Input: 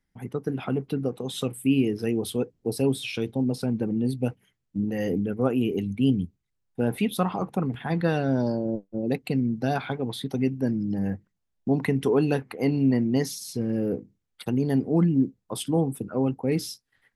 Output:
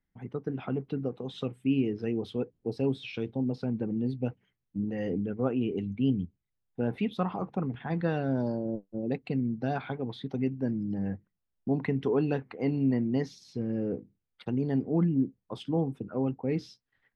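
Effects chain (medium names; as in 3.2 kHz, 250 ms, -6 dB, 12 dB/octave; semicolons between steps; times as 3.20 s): distance through air 200 m; trim -4.5 dB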